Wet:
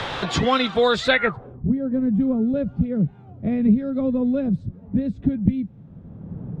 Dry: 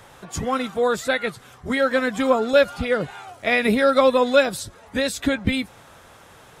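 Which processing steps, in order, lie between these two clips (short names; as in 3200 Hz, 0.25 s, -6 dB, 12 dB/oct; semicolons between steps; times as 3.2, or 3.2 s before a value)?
low-pass sweep 3800 Hz -> 180 Hz, 1.09–1.65; three-band squash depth 70%; gain +4.5 dB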